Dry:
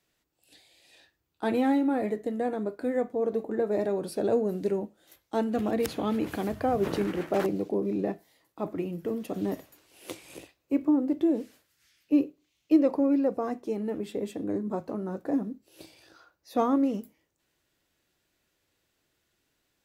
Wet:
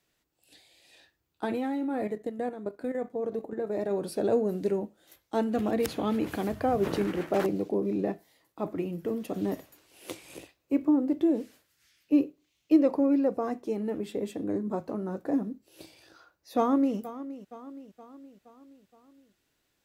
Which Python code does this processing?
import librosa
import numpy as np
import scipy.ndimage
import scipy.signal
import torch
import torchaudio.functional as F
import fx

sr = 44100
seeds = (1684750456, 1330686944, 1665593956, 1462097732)

y = fx.level_steps(x, sr, step_db=10, at=(1.45, 3.91))
y = fx.echo_throw(y, sr, start_s=16.57, length_s=0.4, ms=470, feedback_pct=55, wet_db=-14.5)